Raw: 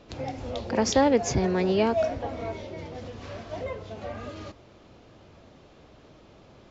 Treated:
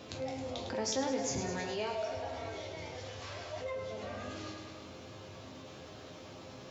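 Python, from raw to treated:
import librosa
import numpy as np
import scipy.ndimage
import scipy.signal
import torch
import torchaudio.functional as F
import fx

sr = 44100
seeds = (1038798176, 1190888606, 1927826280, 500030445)

y = fx.peak_eq(x, sr, hz=230.0, db=-11.5, octaves=1.0, at=(1.56, 3.76))
y = scipy.signal.sosfilt(scipy.signal.butter(2, 75.0, 'highpass', fs=sr, output='sos'), y)
y = fx.high_shelf(y, sr, hz=4000.0, db=9.0)
y = fx.resonator_bank(y, sr, root=41, chord='minor', decay_s=0.26)
y = fx.echo_feedback(y, sr, ms=105, feedback_pct=59, wet_db=-9.0)
y = fx.env_flatten(y, sr, amount_pct=50)
y = y * librosa.db_to_amplitude(-5.0)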